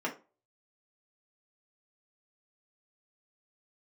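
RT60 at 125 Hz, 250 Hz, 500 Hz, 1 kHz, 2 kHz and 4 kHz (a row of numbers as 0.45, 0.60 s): 0.30, 0.35, 0.35, 0.30, 0.25, 0.20 s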